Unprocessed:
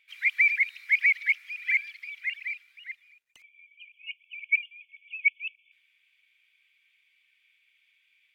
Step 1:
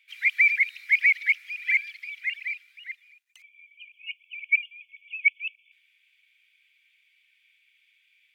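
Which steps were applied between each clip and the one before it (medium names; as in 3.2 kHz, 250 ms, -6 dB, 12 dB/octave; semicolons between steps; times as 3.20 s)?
high-pass 1.5 kHz 12 dB/octave; trim +3 dB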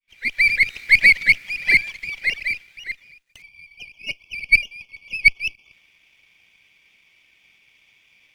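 fade-in on the opening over 0.77 s; sliding maximum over 3 samples; trim +8 dB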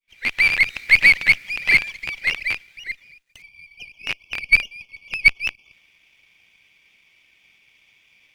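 rattle on loud lows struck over -47 dBFS, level -11 dBFS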